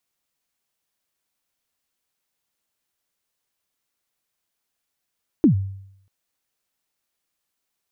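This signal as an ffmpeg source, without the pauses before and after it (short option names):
-f lavfi -i "aevalsrc='0.376*pow(10,-3*t/0.73)*sin(2*PI*(350*0.106/log(97/350)*(exp(log(97/350)*min(t,0.106)/0.106)-1)+97*max(t-0.106,0)))':d=0.64:s=44100"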